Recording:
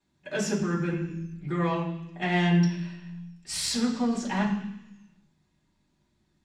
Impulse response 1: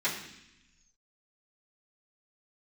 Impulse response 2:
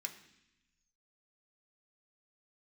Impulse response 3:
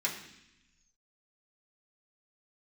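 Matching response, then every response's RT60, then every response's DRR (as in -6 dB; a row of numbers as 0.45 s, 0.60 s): 1; 0.80 s, 0.80 s, 0.80 s; -13.0 dB, 2.5 dB, -5.0 dB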